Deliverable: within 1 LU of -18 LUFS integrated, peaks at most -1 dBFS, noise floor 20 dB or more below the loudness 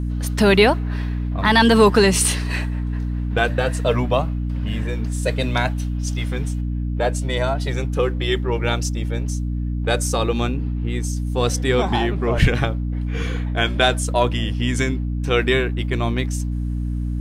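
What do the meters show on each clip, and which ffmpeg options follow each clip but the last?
hum 60 Hz; harmonics up to 300 Hz; hum level -21 dBFS; loudness -20.5 LUFS; peak -2.0 dBFS; loudness target -18.0 LUFS
-> -af "bandreject=f=60:t=h:w=4,bandreject=f=120:t=h:w=4,bandreject=f=180:t=h:w=4,bandreject=f=240:t=h:w=4,bandreject=f=300:t=h:w=4"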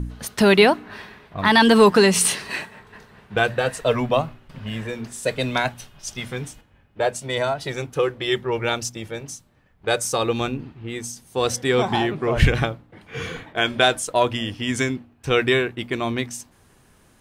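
hum none; loudness -21.5 LUFS; peak -2.5 dBFS; loudness target -18.0 LUFS
-> -af "volume=3.5dB,alimiter=limit=-1dB:level=0:latency=1"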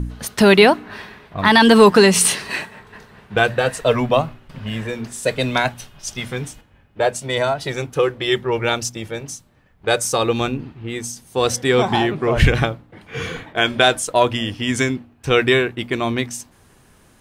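loudness -18.0 LUFS; peak -1.0 dBFS; noise floor -53 dBFS

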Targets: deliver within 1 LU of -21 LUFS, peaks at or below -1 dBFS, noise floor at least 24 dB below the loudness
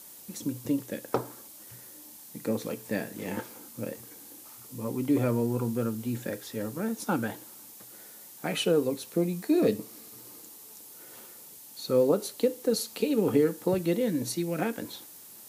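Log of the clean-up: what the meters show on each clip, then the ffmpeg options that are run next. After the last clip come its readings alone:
noise floor -49 dBFS; noise floor target -54 dBFS; loudness -29.5 LUFS; peak -11.5 dBFS; loudness target -21.0 LUFS
-> -af "afftdn=nr=6:nf=-49"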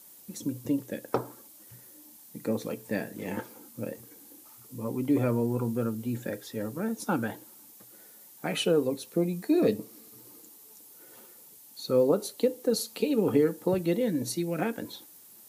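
noise floor -53 dBFS; noise floor target -54 dBFS
-> -af "afftdn=nr=6:nf=-53"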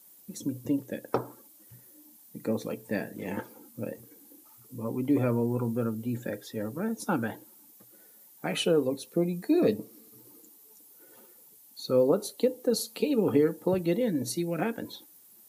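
noise floor -56 dBFS; loudness -29.5 LUFS; peak -12.0 dBFS; loudness target -21.0 LUFS
-> -af "volume=8.5dB"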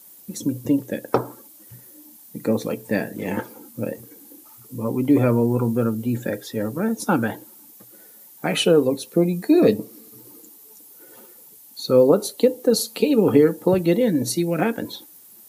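loudness -21.0 LUFS; peak -3.5 dBFS; noise floor -48 dBFS

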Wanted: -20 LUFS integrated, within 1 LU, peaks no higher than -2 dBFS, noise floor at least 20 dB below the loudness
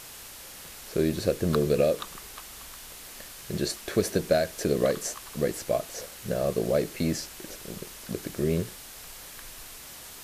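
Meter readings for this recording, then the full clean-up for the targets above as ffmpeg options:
noise floor -45 dBFS; noise floor target -49 dBFS; loudness -28.5 LUFS; peak -11.0 dBFS; loudness target -20.0 LUFS
-> -af "afftdn=nr=6:nf=-45"
-af "volume=8.5dB"

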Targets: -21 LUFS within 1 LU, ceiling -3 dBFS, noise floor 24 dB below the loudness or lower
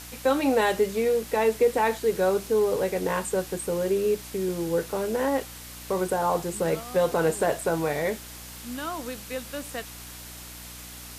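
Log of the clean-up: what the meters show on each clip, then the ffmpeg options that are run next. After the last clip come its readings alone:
hum 60 Hz; harmonics up to 300 Hz; hum level -45 dBFS; noise floor -42 dBFS; noise floor target -50 dBFS; loudness -26.0 LUFS; peak -11.0 dBFS; loudness target -21.0 LUFS
-> -af "bandreject=f=60:t=h:w=4,bandreject=f=120:t=h:w=4,bandreject=f=180:t=h:w=4,bandreject=f=240:t=h:w=4,bandreject=f=300:t=h:w=4"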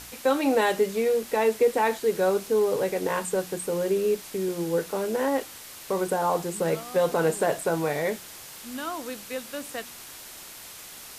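hum none; noise floor -44 dBFS; noise floor target -50 dBFS
-> -af "afftdn=nr=6:nf=-44"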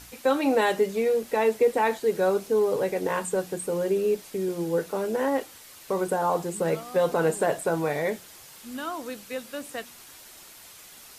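noise floor -48 dBFS; noise floor target -50 dBFS
-> -af "afftdn=nr=6:nf=-48"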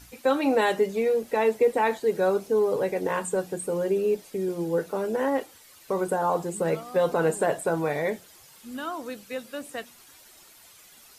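noise floor -53 dBFS; loudness -26.5 LUFS; peak -11.5 dBFS; loudness target -21.0 LUFS
-> -af "volume=5.5dB"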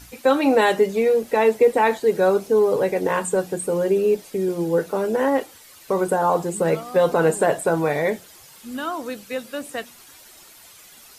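loudness -21.0 LUFS; peak -6.0 dBFS; noise floor -47 dBFS

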